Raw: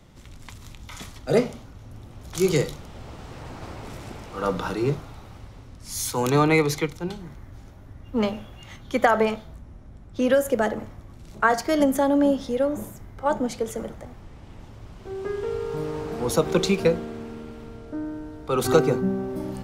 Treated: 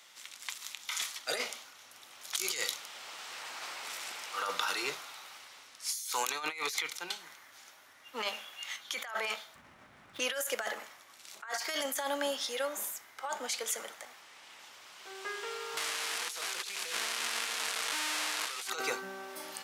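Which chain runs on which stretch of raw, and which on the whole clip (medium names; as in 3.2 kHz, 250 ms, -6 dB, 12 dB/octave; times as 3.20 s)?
9.55–10.20 s: median filter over 9 samples + tone controls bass +14 dB, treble -7 dB + level flattener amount 50%
15.77–18.70 s: one-bit delta coder 64 kbps, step -17.5 dBFS + loudspeaker Doppler distortion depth 0.15 ms
whole clip: Bessel high-pass 2.1 kHz, order 2; compressor with a negative ratio -39 dBFS, ratio -1; trim +3.5 dB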